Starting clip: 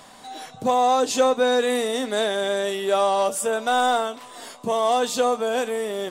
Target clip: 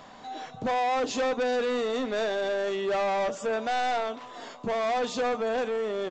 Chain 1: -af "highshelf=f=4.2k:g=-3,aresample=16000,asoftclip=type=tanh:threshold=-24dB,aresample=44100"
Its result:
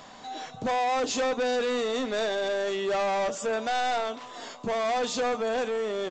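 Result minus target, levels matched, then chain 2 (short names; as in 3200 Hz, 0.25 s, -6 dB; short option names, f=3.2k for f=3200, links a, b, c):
8000 Hz band +5.0 dB
-af "highshelf=f=4.2k:g=-12,aresample=16000,asoftclip=type=tanh:threshold=-24dB,aresample=44100"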